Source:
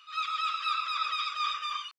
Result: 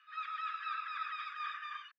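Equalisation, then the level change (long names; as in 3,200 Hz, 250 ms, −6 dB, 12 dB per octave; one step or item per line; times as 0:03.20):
resonant band-pass 1,700 Hz, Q 10
+7.5 dB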